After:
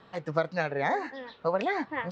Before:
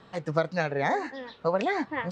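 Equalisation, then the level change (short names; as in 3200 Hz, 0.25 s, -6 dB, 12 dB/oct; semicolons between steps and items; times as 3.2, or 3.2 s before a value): air absorption 91 m; low shelf 360 Hz -4.5 dB; 0.0 dB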